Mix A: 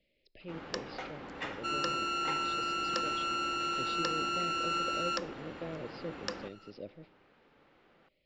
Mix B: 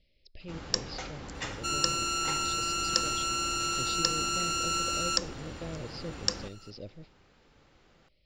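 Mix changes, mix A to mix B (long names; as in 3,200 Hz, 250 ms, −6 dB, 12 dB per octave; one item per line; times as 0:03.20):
speech: send −7.5 dB
master: remove three-way crossover with the lows and the highs turned down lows −15 dB, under 180 Hz, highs −21 dB, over 3,400 Hz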